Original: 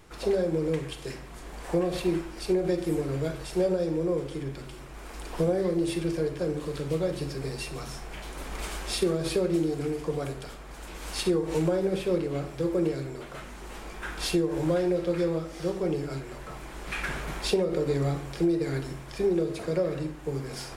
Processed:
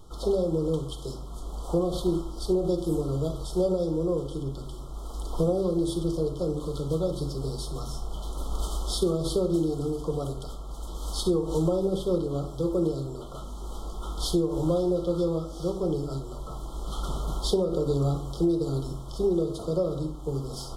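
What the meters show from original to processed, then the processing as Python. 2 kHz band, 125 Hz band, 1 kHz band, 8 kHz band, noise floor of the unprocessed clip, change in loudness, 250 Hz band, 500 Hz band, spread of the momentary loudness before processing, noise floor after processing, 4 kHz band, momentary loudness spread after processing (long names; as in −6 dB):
below −25 dB, +2.5 dB, 0.0 dB, 0.0 dB, −43 dBFS, +0.5 dB, +1.0 dB, +0.5 dB, 14 LU, −38 dBFS, −0.5 dB, 13 LU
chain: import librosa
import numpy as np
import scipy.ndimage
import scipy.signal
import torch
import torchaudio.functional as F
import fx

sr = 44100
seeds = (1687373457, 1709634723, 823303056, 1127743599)

y = fx.brickwall_bandstop(x, sr, low_hz=1400.0, high_hz=3000.0)
y = fx.low_shelf(y, sr, hz=71.0, db=11.5)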